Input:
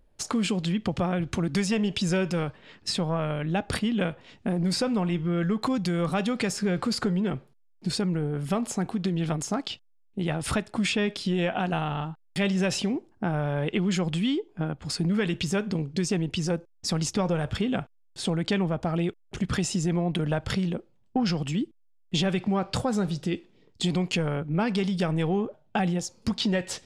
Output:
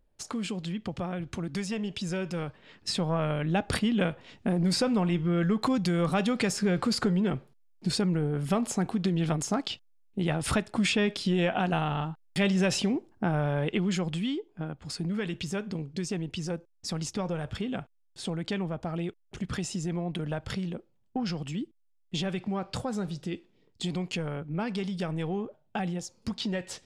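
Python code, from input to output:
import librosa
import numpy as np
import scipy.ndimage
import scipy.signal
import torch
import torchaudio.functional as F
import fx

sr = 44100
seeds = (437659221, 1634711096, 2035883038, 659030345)

y = fx.gain(x, sr, db=fx.line((2.15, -7.0), (3.24, 0.0), (13.45, 0.0), (14.48, -6.0)))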